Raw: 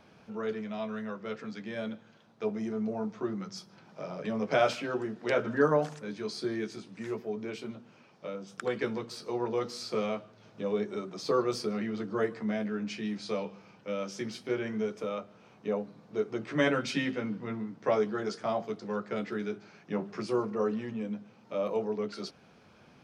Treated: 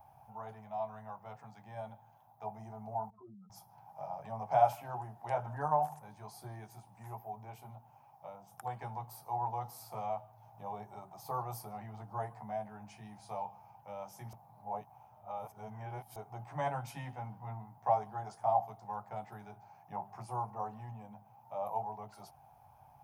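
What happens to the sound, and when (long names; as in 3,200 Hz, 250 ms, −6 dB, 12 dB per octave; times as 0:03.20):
0:03.10–0:03.50: expanding power law on the bin magnitudes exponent 2.6
0:14.33–0:16.16: reverse
whole clip: drawn EQ curve 130 Hz 0 dB, 180 Hz −18 dB, 310 Hz −24 dB, 480 Hz −22 dB, 810 Hz +11 dB, 1,300 Hz −15 dB, 2,800 Hz −19 dB, 4,300 Hz −22 dB, 8,200 Hz −8 dB, 12,000 Hz +13 dB; level +1 dB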